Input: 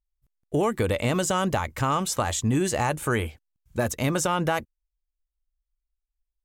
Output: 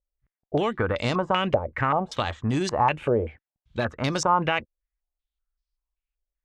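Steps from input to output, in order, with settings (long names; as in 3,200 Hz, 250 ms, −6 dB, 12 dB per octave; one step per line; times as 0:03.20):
harmonic generator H 3 −21 dB, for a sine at −11 dBFS
low-pass on a step sequencer 5.2 Hz 550–4,900 Hz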